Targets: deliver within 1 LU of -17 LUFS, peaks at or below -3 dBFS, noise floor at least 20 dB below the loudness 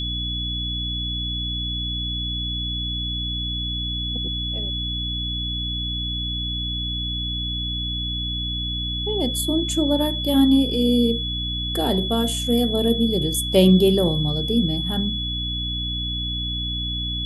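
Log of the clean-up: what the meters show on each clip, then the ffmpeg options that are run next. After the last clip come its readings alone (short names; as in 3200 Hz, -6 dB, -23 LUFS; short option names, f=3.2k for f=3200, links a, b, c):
hum 60 Hz; harmonics up to 300 Hz; hum level -27 dBFS; steady tone 3400 Hz; tone level -26 dBFS; loudness -22.5 LUFS; peak -4.0 dBFS; loudness target -17.0 LUFS
-> -af "bandreject=f=60:t=h:w=6,bandreject=f=120:t=h:w=6,bandreject=f=180:t=h:w=6,bandreject=f=240:t=h:w=6,bandreject=f=300:t=h:w=6"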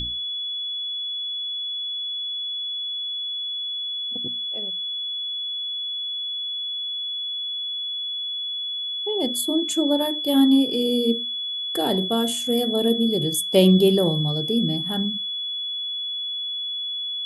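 hum none; steady tone 3400 Hz; tone level -26 dBFS
-> -af "bandreject=f=3.4k:w=30"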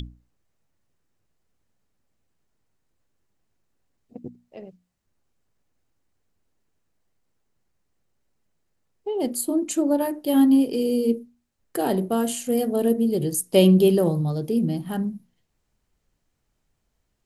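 steady tone none; loudness -22.0 LUFS; peak -4.5 dBFS; loudness target -17.0 LUFS
-> -af "volume=5dB,alimiter=limit=-3dB:level=0:latency=1"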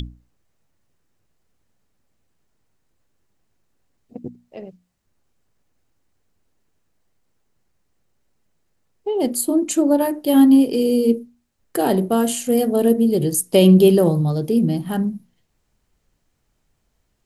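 loudness -17.0 LUFS; peak -3.0 dBFS; noise floor -69 dBFS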